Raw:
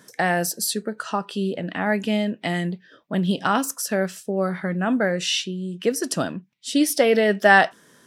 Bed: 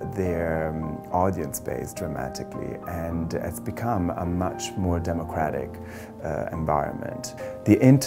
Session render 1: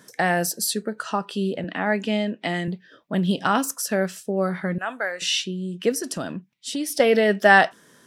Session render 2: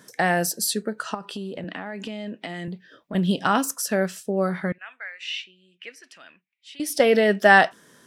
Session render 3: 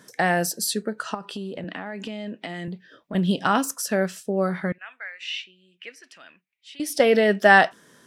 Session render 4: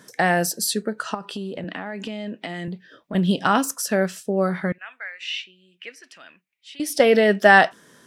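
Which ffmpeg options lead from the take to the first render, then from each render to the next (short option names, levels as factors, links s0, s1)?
-filter_complex "[0:a]asettb=1/sr,asplit=3[s0][s1][s2];[s0]atrim=end=1.644[s3];[s1]atrim=start=1.64:end=2.68,asetpts=PTS-STARTPTS,afade=t=in:d=0.004:c=qsin,afade=t=out:st=1.036:d=0.004:c=qsin,highpass=180,lowpass=7700[s4];[s2]atrim=start=2.676[s5];[s3][s4]acrossfade=d=0.004:c1=hsin:c2=qsin[s6];[s6][s5]acrossfade=d=0.004:c1=qsin:c2=hsin,asettb=1/sr,asplit=3[s7][s8][s9];[s7]atrim=end=4.784[s10];[s8]atrim=start=4.78:end=5.22,asetpts=PTS-STARTPTS,afade=t=in:d=0.004:c=qsin,afade=t=out:st=0.436:d=0.004:c=qsin,highpass=810[s11];[s9]atrim=start=5.216[s12];[s10][s11]acrossfade=d=0.004:c1=hsin:c2=qsin[s13];[s13][s12]acrossfade=d=0.004:c1=qsin:c2=hsin,asettb=1/sr,asplit=3[s14][s15][s16];[s14]atrim=end=6.004[s17];[s15]atrim=start=6:end=7,asetpts=PTS-STARTPTS,afade=t=in:d=0.004:c=qsin,afade=t=out:st=0.996:d=0.004:c=qsin,acompressor=threshold=0.0501:ratio=3:attack=3.2:release=140:knee=1:detection=peak[s18];[s16]atrim=start=6.996[s19];[s17][s18]acrossfade=d=0.004:c1=hsin:c2=qsin[s20];[s20][s19]acrossfade=d=0.004:c1=qsin:c2=hsin"
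-filter_complex "[0:a]asettb=1/sr,asplit=3[s0][s1][s2];[s0]atrim=end=1.144[s3];[s1]atrim=start=1.14:end=3.15,asetpts=PTS-STARTPTS,afade=t=in:d=0.004:c=qsin,afade=t=out:st=2.006:d=0.004:c=qsin,acompressor=threshold=0.0398:ratio=12:attack=3.2:release=140:knee=1:detection=peak[s4];[s2]atrim=start=3.146[s5];[s3][s4]acrossfade=d=0.004:c1=hsin:c2=qsin[s6];[s6][s5]acrossfade=d=0.004:c1=qsin:c2=hsin,asettb=1/sr,asplit=3[s7][s8][s9];[s7]atrim=end=4.724[s10];[s8]atrim=start=4.72:end=6.8,asetpts=PTS-STARTPTS,afade=t=in:d=0.004:c=qsin,afade=t=out:st=2.076:d=0.004:c=qsin,bandpass=f=2300:t=q:w=3.5[s11];[s9]atrim=start=6.796[s12];[s10][s11]acrossfade=d=0.004:c1=hsin:c2=qsin[s13];[s13][s12]acrossfade=d=0.004:c1=qsin:c2=hsin"
-af "highshelf=f=10000:g=-3.5"
-af "volume=1.26,alimiter=limit=0.891:level=0:latency=1"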